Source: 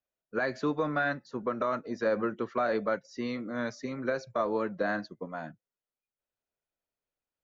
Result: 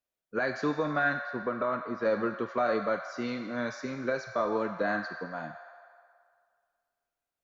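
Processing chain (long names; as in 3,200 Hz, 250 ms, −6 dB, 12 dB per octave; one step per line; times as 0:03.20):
0:01.22–0:02.05: high-frequency loss of the air 210 metres
on a send: high-pass filter 720 Hz 24 dB per octave + convolution reverb RT60 2.1 s, pre-delay 4 ms, DRR 4 dB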